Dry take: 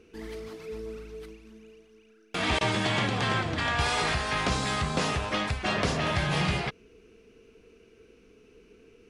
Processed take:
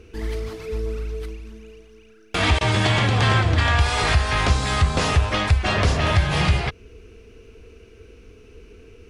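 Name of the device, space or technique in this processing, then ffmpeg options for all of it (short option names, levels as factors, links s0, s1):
car stereo with a boomy subwoofer: -af "lowshelf=f=120:t=q:w=1.5:g=9.5,alimiter=limit=0.158:level=0:latency=1:release=368,volume=2.51"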